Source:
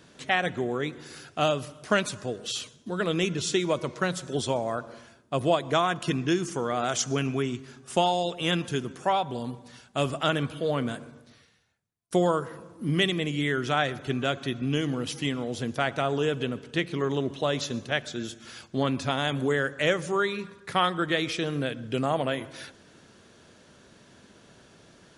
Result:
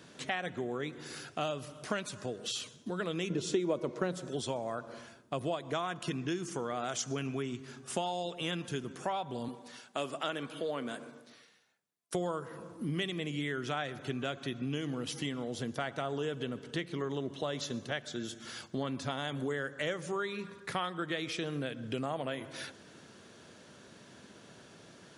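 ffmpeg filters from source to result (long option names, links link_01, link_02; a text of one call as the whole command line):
ffmpeg -i in.wav -filter_complex "[0:a]asettb=1/sr,asplit=3[link_01][link_02][link_03];[link_01]atrim=end=3.304[link_04];[link_02]atrim=start=3.3:end=4.29,asetpts=PTS-STARTPTS,afade=type=in:duration=0.004:curve=qsin,afade=type=out:start_time=0.986:duration=0.004:curve=qsin,equalizer=frequency=370:width=0.5:gain=11.5[link_05];[link_03]atrim=start=4.286[link_06];[link_04][link_05]acrossfade=duration=0.004:curve1=hsin:curve2=qsin[link_07];[link_07][link_06]acrossfade=duration=0.004:curve1=qsin:curve2=hsin,asettb=1/sr,asplit=3[link_08][link_09][link_10];[link_08]atrim=end=9.484[link_11];[link_09]atrim=start=9.48:end=12.15,asetpts=PTS-STARTPTS,afade=type=in:duration=0.004:curve=qsin,afade=type=out:start_time=2.666:duration=0.004:curve=qsin,highpass=250[link_12];[link_10]atrim=start=12.146[link_13];[link_11][link_12]acrossfade=duration=0.004:curve1=hsin:curve2=qsin[link_14];[link_14][link_13]acrossfade=duration=0.004:curve1=qsin:curve2=hsin,asettb=1/sr,asplit=3[link_15][link_16][link_17];[link_15]atrim=end=15.104[link_18];[link_16]atrim=start=15.1:end=20.01,asetpts=PTS-STARTPTS,afade=type=in:duration=0.004:curve=qsin,afade=type=out:start_time=4.906:duration=0.004:curve=qsin,bandreject=frequency=2500:width=12[link_19];[link_17]atrim=start=20.006[link_20];[link_18][link_19]acrossfade=duration=0.004:curve1=hsin:curve2=qsin[link_21];[link_21][link_20]acrossfade=duration=0.004:curve1=qsin:curve2=hsin,highpass=97,acompressor=threshold=-36dB:ratio=2.5" out.wav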